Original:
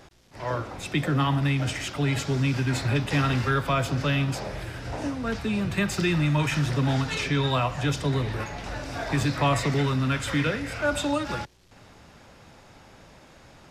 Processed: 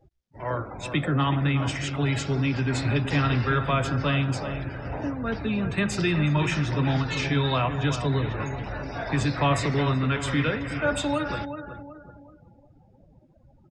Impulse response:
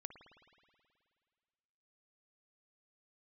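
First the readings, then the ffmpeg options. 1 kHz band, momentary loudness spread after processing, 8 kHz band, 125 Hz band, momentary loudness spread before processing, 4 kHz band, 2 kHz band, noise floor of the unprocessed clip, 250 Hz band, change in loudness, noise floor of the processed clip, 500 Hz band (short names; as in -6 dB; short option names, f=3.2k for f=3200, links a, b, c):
+0.5 dB, 9 LU, -2.0 dB, +0.5 dB, 9 LU, -0.5 dB, 0.0 dB, -52 dBFS, +0.5 dB, +0.5 dB, -57 dBFS, +0.5 dB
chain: -filter_complex "[0:a]asplit=2[a][b];[b]adelay=374,lowpass=f=3.1k:p=1,volume=-9dB,asplit=2[c][d];[d]adelay=374,lowpass=f=3.1k:p=1,volume=0.42,asplit=2[e][f];[f]adelay=374,lowpass=f=3.1k:p=1,volume=0.42,asplit=2[g][h];[h]adelay=374,lowpass=f=3.1k:p=1,volume=0.42,asplit=2[i][j];[j]adelay=374,lowpass=f=3.1k:p=1,volume=0.42[k];[a][c][e][g][i][k]amix=inputs=6:normalize=0,afftdn=nr=31:nf=-42"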